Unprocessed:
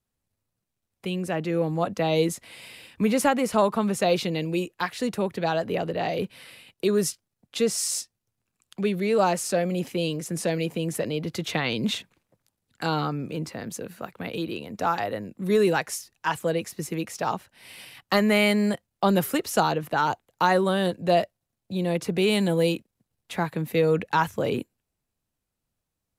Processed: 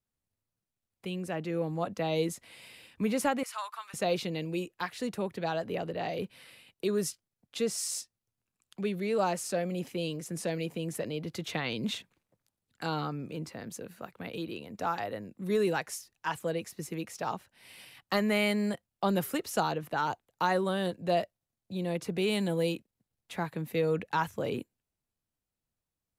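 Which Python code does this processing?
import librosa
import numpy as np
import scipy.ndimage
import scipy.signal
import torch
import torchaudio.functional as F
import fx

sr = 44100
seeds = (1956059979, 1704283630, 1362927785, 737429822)

y = fx.highpass(x, sr, hz=1100.0, slope=24, at=(3.43, 3.94))
y = y * 10.0 ** (-7.0 / 20.0)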